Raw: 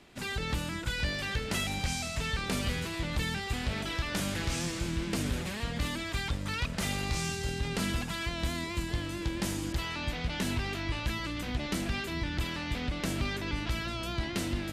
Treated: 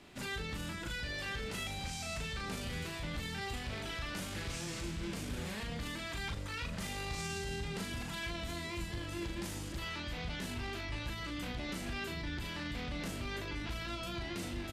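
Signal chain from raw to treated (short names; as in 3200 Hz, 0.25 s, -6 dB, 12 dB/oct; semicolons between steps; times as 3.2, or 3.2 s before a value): limiter -32 dBFS, peak gain reduction 11 dB; doubler 38 ms -4 dB; gain -1 dB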